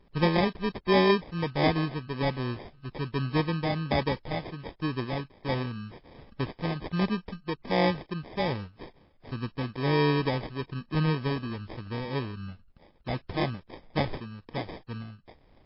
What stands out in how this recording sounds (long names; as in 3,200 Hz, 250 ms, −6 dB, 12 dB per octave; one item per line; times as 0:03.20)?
aliases and images of a low sample rate 1,400 Hz, jitter 0%
tremolo triangle 1.3 Hz, depth 50%
MP3